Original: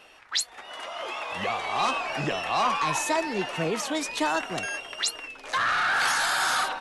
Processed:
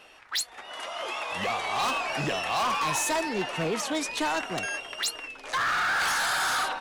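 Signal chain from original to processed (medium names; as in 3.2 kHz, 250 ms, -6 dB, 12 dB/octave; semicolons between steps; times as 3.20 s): 0.76–3.29 s: treble shelf 5.8 kHz +6.5 dB; hard clipper -23 dBFS, distortion -13 dB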